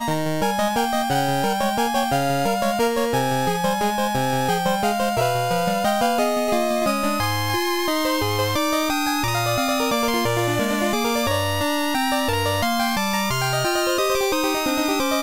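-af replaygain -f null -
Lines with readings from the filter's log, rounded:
track_gain = +4.6 dB
track_peak = 0.227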